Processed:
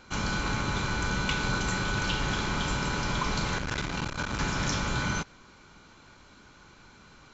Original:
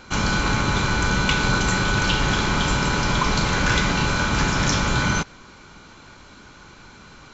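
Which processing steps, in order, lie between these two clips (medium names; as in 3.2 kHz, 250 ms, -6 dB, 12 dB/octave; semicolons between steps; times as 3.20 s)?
3.58–4.39 s: transformer saturation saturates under 320 Hz; trim -8.5 dB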